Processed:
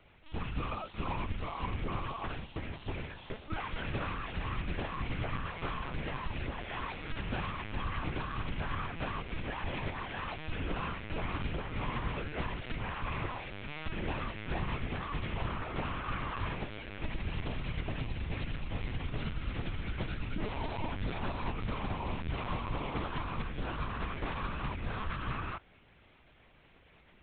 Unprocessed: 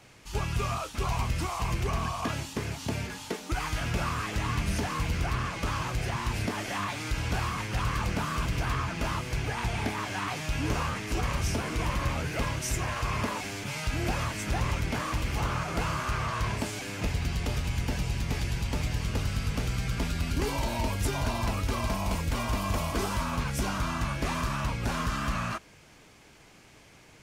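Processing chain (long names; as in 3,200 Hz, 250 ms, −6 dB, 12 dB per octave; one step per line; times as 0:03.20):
linear-prediction vocoder at 8 kHz pitch kept
level −6 dB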